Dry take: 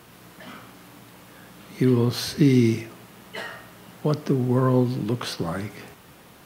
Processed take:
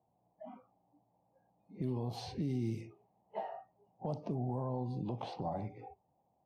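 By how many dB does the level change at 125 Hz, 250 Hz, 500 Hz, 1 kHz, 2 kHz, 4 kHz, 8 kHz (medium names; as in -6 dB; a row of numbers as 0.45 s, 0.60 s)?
-15.0 dB, -17.5 dB, -16.0 dB, -9.0 dB, -25.0 dB, -20.0 dB, -23.5 dB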